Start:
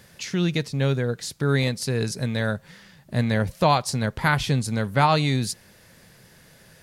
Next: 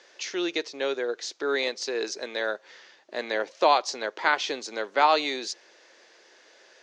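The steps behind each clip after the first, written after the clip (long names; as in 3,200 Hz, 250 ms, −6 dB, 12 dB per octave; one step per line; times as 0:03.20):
Chebyshev band-pass filter 330–6,500 Hz, order 4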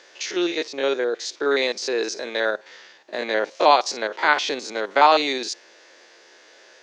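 spectrum averaged block by block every 50 ms
level +6.5 dB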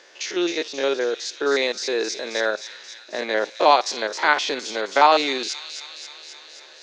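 delay with a high-pass on its return 266 ms, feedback 70%, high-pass 3,600 Hz, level −6 dB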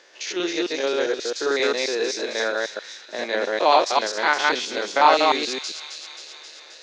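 delay that plays each chunk backwards 133 ms, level −0.5 dB
level −2.5 dB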